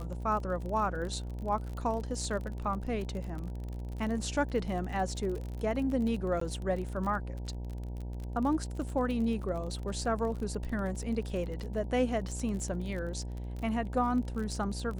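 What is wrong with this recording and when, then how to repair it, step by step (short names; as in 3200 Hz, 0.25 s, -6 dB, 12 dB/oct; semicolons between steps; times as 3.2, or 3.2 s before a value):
buzz 60 Hz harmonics 16 -38 dBFS
crackle 37/s -37 dBFS
6.4–6.41 gap 14 ms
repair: de-click; de-hum 60 Hz, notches 16; interpolate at 6.4, 14 ms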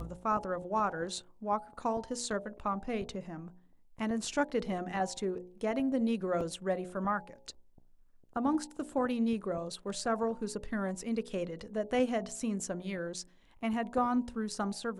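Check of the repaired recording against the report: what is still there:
none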